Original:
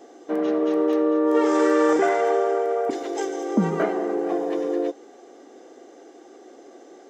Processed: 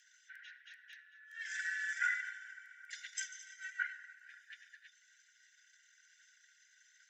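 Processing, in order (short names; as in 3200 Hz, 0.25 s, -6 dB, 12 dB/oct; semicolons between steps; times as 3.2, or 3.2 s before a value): formant sharpening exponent 1.5; frequency shift -31 Hz; brick-wall FIR high-pass 1400 Hz; gain +5.5 dB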